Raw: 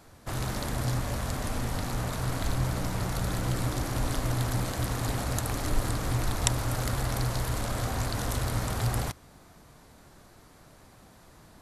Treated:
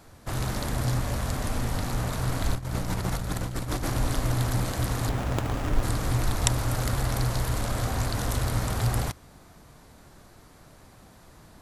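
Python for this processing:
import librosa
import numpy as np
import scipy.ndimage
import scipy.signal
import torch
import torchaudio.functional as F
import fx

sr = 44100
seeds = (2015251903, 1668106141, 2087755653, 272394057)

y = fx.low_shelf(x, sr, hz=130.0, db=2.5)
y = fx.over_compress(y, sr, threshold_db=-30.0, ratio=-0.5, at=(2.55, 3.9))
y = fx.running_max(y, sr, window=9, at=(5.09, 5.83))
y = y * 10.0 ** (1.5 / 20.0)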